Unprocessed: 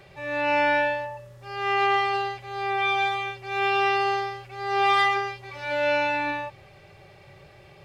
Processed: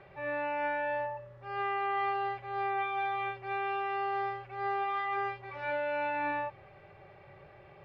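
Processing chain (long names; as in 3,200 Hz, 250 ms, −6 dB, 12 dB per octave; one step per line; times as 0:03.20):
low-pass filter 1,700 Hz 12 dB per octave
low-shelf EQ 400 Hz −7 dB
brickwall limiter −26 dBFS, peak gain reduction 11.5 dB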